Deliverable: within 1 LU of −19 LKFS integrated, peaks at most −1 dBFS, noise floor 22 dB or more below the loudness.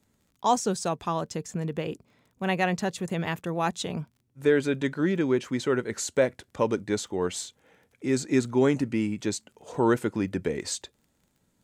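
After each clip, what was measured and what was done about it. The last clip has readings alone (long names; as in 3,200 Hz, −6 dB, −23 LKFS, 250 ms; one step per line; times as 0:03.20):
crackle rate 24 per second; integrated loudness −28.0 LKFS; sample peak −10.5 dBFS; target loudness −19.0 LKFS
→ click removal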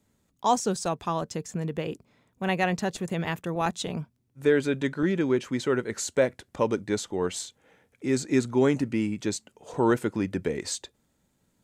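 crackle rate 0.17 per second; integrated loudness −28.0 LKFS; sample peak −10.5 dBFS; target loudness −19.0 LKFS
→ level +9 dB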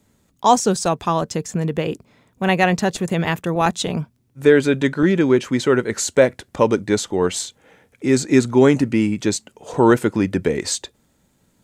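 integrated loudness −19.0 LKFS; sample peak −1.5 dBFS; background noise floor −63 dBFS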